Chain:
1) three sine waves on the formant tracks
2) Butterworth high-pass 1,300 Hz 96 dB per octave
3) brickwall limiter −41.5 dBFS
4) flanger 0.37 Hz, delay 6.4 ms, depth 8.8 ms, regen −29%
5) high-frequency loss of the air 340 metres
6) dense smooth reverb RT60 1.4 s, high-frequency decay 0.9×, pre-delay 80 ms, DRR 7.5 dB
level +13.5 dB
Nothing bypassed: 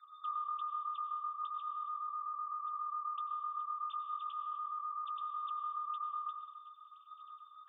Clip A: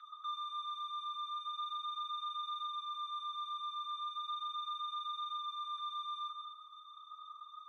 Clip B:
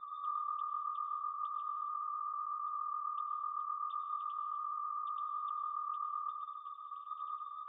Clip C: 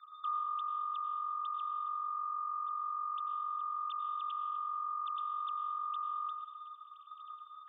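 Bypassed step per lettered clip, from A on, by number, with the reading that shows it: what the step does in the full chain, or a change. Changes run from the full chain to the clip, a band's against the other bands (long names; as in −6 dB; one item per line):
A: 1, change in momentary loudness spread −3 LU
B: 2, change in momentary loudness spread −9 LU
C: 4, change in momentary loudness spread −1 LU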